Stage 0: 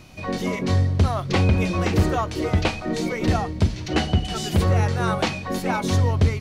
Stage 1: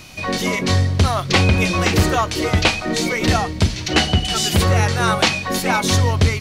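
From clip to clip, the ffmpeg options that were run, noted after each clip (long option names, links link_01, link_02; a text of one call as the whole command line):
ffmpeg -i in.wav -af "tiltshelf=frequency=1300:gain=-5,volume=7.5dB" out.wav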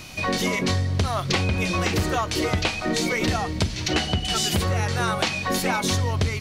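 ffmpeg -i in.wav -af "acompressor=threshold=-20dB:ratio=6" out.wav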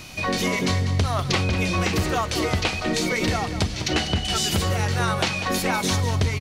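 ffmpeg -i in.wav -af "aecho=1:1:196|392|588|784:0.282|0.101|0.0365|0.0131" out.wav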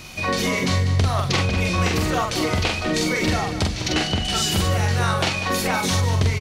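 ffmpeg -i in.wav -filter_complex "[0:a]asplit=2[link_01][link_02];[link_02]adelay=45,volume=-3.5dB[link_03];[link_01][link_03]amix=inputs=2:normalize=0" out.wav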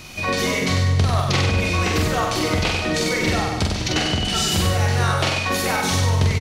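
ffmpeg -i in.wav -af "aecho=1:1:95:0.596" out.wav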